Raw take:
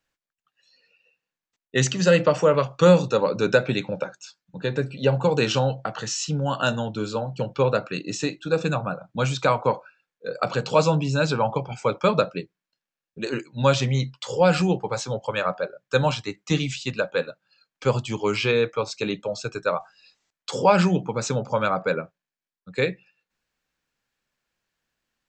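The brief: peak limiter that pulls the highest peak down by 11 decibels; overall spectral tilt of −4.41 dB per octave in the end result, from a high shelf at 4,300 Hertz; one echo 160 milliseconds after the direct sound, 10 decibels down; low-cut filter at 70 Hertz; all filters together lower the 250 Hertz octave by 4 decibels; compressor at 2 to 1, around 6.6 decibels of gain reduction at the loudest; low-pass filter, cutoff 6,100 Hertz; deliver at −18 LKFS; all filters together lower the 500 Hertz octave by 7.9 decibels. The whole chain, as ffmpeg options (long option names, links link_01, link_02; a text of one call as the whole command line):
ffmpeg -i in.wav -af "highpass=70,lowpass=6100,equalizer=frequency=250:width_type=o:gain=-4.5,equalizer=frequency=500:width_type=o:gain=-8,highshelf=frequency=4300:gain=4.5,acompressor=threshold=-28dB:ratio=2,alimiter=limit=-23dB:level=0:latency=1,aecho=1:1:160:0.316,volume=16dB" out.wav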